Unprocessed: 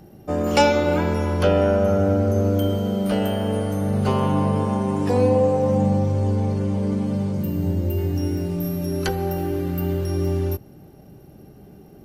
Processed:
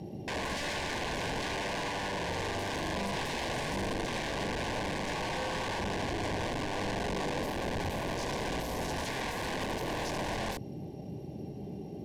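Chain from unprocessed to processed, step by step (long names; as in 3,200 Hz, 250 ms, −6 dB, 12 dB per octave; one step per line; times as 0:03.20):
high-pass filter 88 Hz 12 dB per octave
parametric band 1,500 Hz −14 dB 0.68 octaves
brickwall limiter −17.5 dBFS, peak gain reduction 11 dB
compressor whose output falls as the input rises −30 dBFS, ratio −1
wrap-around overflow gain 28 dB
Butterworth band-reject 1,300 Hz, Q 3.5
high-frequency loss of the air 74 metres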